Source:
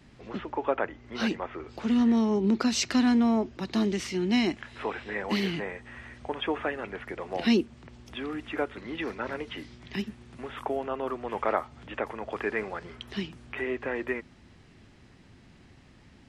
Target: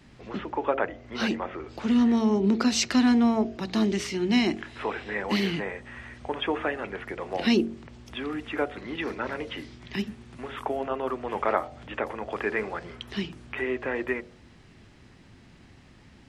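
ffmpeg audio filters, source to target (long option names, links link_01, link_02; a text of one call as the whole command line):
ffmpeg -i in.wav -af "bandreject=frequency=45.66:width_type=h:width=4,bandreject=frequency=91.32:width_type=h:width=4,bandreject=frequency=136.98:width_type=h:width=4,bandreject=frequency=182.64:width_type=h:width=4,bandreject=frequency=228.3:width_type=h:width=4,bandreject=frequency=273.96:width_type=h:width=4,bandreject=frequency=319.62:width_type=h:width=4,bandreject=frequency=365.28:width_type=h:width=4,bandreject=frequency=410.94:width_type=h:width=4,bandreject=frequency=456.6:width_type=h:width=4,bandreject=frequency=502.26:width_type=h:width=4,bandreject=frequency=547.92:width_type=h:width=4,bandreject=frequency=593.58:width_type=h:width=4,bandreject=frequency=639.24:width_type=h:width=4,bandreject=frequency=684.9:width_type=h:width=4,bandreject=frequency=730.56:width_type=h:width=4,bandreject=frequency=776.22:width_type=h:width=4,volume=2.5dB" out.wav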